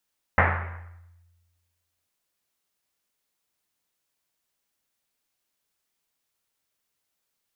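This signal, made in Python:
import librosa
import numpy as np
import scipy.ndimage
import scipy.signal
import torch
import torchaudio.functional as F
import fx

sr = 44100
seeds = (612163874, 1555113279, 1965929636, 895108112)

y = fx.risset_drum(sr, seeds[0], length_s=1.69, hz=86.0, decay_s=1.48, noise_hz=1300.0, noise_width_hz=1500.0, noise_pct=55)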